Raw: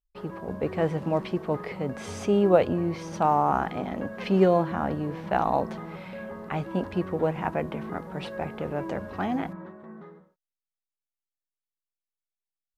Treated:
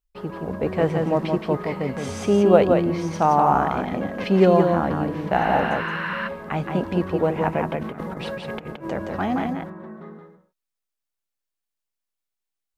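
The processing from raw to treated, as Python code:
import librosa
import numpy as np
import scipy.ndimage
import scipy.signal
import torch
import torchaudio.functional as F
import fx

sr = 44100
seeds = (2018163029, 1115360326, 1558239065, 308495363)

y = fx.over_compress(x, sr, threshold_db=-37.0, ratio=-0.5, at=(7.75, 8.85))
y = y + 10.0 ** (-4.5 / 20.0) * np.pad(y, (int(171 * sr / 1000.0), 0))[:len(y)]
y = fx.spec_repair(y, sr, seeds[0], start_s=5.39, length_s=0.86, low_hz=930.0, high_hz=5800.0, source='before')
y = y * 10.0 ** (4.0 / 20.0)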